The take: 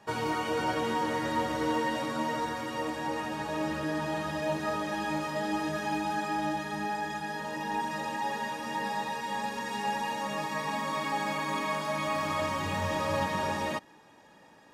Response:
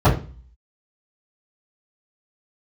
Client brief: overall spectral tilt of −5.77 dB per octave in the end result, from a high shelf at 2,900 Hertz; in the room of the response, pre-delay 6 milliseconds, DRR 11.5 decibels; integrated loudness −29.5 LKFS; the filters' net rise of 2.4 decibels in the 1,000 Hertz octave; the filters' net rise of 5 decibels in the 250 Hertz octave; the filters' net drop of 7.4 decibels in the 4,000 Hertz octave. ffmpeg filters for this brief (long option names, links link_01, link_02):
-filter_complex "[0:a]equalizer=frequency=250:width_type=o:gain=6.5,equalizer=frequency=1000:width_type=o:gain=3.5,highshelf=frequency=2900:gain=-8,equalizer=frequency=4000:width_type=o:gain=-4,asplit=2[link_01][link_02];[1:a]atrim=start_sample=2205,adelay=6[link_03];[link_02][link_03]afir=irnorm=-1:irlink=0,volume=-34dB[link_04];[link_01][link_04]amix=inputs=2:normalize=0,volume=-0.5dB"